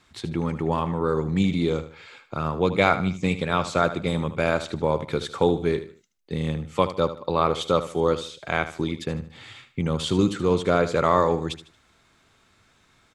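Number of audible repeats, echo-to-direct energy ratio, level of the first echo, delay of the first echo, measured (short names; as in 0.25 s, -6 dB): 3, -12.0 dB, -12.5 dB, 76 ms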